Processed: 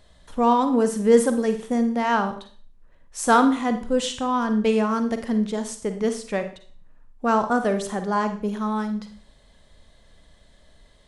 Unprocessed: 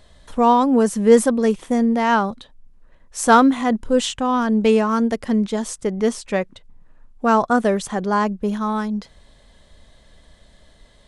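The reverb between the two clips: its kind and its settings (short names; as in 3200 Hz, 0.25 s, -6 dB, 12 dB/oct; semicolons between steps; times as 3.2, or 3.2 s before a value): Schroeder reverb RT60 0.45 s, DRR 8 dB; gain -4.5 dB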